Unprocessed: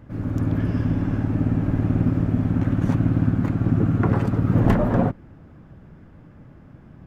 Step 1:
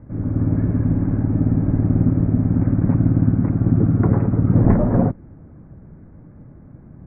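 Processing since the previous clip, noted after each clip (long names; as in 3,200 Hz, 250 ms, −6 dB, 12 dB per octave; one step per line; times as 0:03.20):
Butterworth low-pass 2,400 Hz 72 dB per octave
tilt shelving filter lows +7 dB, about 1,100 Hz
level −3 dB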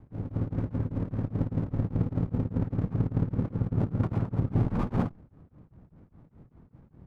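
lower of the sound and its delayed copy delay 0.82 ms
tremolo along a rectified sine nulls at 5 Hz
level −8.5 dB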